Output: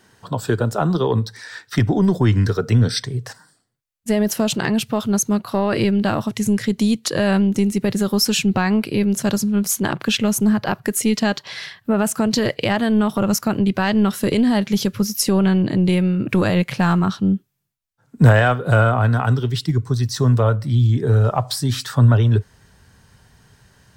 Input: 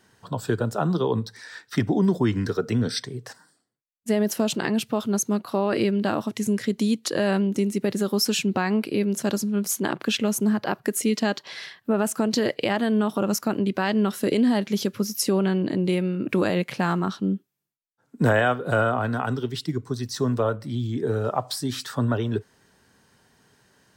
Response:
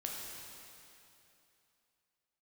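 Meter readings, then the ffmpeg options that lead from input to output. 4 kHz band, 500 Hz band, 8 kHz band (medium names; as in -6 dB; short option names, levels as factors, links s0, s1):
+5.5 dB, +3.0 dB, +5.5 dB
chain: -af "acontrast=69,asubboost=boost=6.5:cutoff=110,volume=0.891"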